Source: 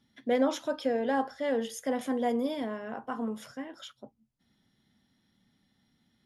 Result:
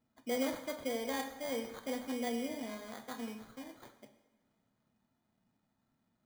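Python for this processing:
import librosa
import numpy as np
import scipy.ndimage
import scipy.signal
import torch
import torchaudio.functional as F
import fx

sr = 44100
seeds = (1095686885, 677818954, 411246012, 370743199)

y = fx.sample_hold(x, sr, seeds[0], rate_hz=2700.0, jitter_pct=0)
y = fx.rev_double_slope(y, sr, seeds[1], early_s=0.93, late_s=2.9, knee_db=-18, drr_db=7.0)
y = F.gain(torch.from_numpy(y), -9.0).numpy()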